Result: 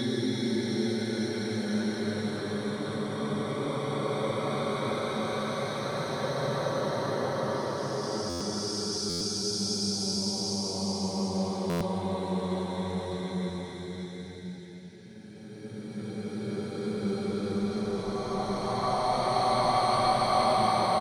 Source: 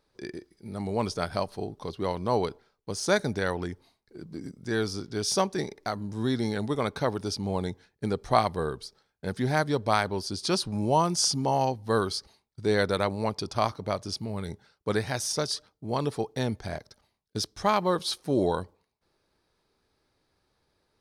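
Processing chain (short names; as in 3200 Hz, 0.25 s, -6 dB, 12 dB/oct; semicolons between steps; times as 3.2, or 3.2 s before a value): bell 5800 Hz +5 dB 1.2 oct; comb 5.3 ms, depth 46%; dynamic EQ 7800 Hz, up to +6 dB, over -43 dBFS, Q 1.3; Paulstretch 10×, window 0.50 s, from 6.36; stuck buffer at 8.29/9.09/11.69, samples 512, times 9; gain -2.5 dB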